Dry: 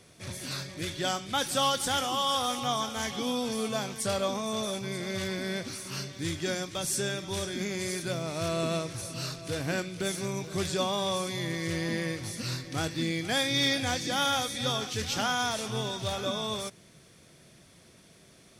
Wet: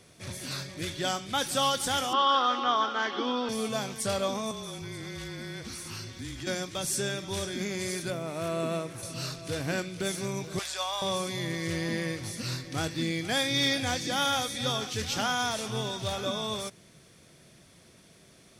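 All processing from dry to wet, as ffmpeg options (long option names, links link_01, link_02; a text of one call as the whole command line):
ffmpeg -i in.wav -filter_complex "[0:a]asettb=1/sr,asplit=3[link_01][link_02][link_03];[link_01]atrim=end=2.134[link_04];[link_02]atrim=start=2.13:end=3.49,asetpts=PTS-STARTPTS,afade=type=in:duration=0.004:curve=qsin,afade=type=out:start_time=1.356:duration=0.004:curve=qsin,acontrast=62,highpass=frequency=300:width=0.5412,highpass=frequency=300:width=1.3066,equalizer=frequency=340:width_type=q:width=4:gain=6,equalizer=frequency=490:width_type=q:width=4:gain=-6,equalizer=frequency=720:width_type=q:width=4:gain=-6,equalizer=frequency=1400:width_type=q:width=4:gain=6,equalizer=frequency=2300:width_type=q:width=4:gain=-10,equalizer=frequency=3600:width_type=q:width=4:gain=-5,lowpass=frequency=3800:width=0.5412,lowpass=frequency=3800:width=1.3066[link_05];[link_03]atrim=start=3.486[link_06];[link_04][link_05]acrossfade=duration=0.004:curve1=hsin:curve2=qsin[link_07];[link_07][link_06]acrossfade=duration=0.004:curve1=qsin:curve2=hsin,asettb=1/sr,asplit=3[link_08][link_09][link_10];[link_08]atrim=end=4.514[link_11];[link_09]atrim=start=4.51:end=6.47,asetpts=PTS-STARTPTS,afade=type=in:duration=0.004:curve=qsin,afade=type=out:start_time=1.956:duration=0.004:curve=qsin,bandreject=frequency=610:width=5.4,acompressor=threshold=-35dB:ratio=4:attack=3.2:release=140:knee=1:detection=peak,afreqshift=-29[link_12];[link_10]atrim=start=6.466[link_13];[link_11][link_12]acrossfade=duration=0.004:curve1=hsin:curve2=qsin[link_14];[link_14][link_13]acrossfade=duration=0.004:curve1=qsin:curve2=hsin,asettb=1/sr,asplit=3[link_15][link_16][link_17];[link_15]atrim=end=8.104[link_18];[link_16]atrim=start=8.1:end=9.03,asetpts=PTS-STARTPTS,afade=type=in:duration=0.004:curve=qsin,afade=type=out:start_time=0.926:duration=0.004:curve=qsin,highpass=150,equalizer=frequency=5000:width=1:gain=-9.5[link_19];[link_17]atrim=start=9.026[link_20];[link_18][link_19]acrossfade=duration=0.004:curve1=hsin:curve2=qsin[link_21];[link_21][link_20]acrossfade=duration=0.004:curve1=qsin:curve2=hsin,asettb=1/sr,asplit=3[link_22][link_23][link_24];[link_22]atrim=end=10.594[link_25];[link_23]atrim=start=10.59:end=11.02,asetpts=PTS-STARTPTS,afade=type=in:duration=0.004:curve=qsin,afade=type=out:start_time=0.426:duration=0.004:curve=qsin,highpass=frequency=690:width=0.5412,highpass=frequency=690:width=1.3066,aeval=exprs='val(0)+0.00126*(sin(2*PI*60*n/s)+sin(2*PI*2*60*n/s)/2+sin(2*PI*3*60*n/s)/3+sin(2*PI*4*60*n/s)/4+sin(2*PI*5*60*n/s)/5)':channel_layout=same[link_26];[link_24]atrim=start=11.016[link_27];[link_25][link_26]acrossfade=duration=0.004:curve1=hsin:curve2=qsin[link_28];[link_28][link_27]acrossfade=duration=0.004:curve1=qsin:curve2=hsin" out.wav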